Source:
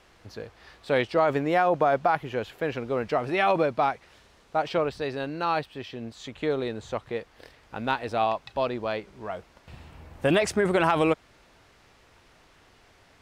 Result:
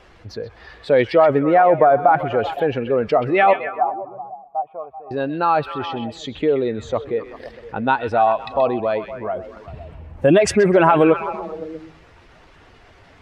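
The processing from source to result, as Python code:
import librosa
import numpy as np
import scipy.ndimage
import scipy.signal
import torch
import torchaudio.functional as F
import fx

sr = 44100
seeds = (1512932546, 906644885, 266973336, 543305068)

y = fx.spec_expand(x, sr, power=1.5)
y = fx.formant_cascade(y, sr, vowel='a', at=(3.53, 5.11))
y = fx.echo_stepped(y, sr, ms=128, hz=2600.0, octaves=-0.7, feedback_pct=70, wet_db=-6.0)
y = y * librosa.db_to_amplitude(9.0)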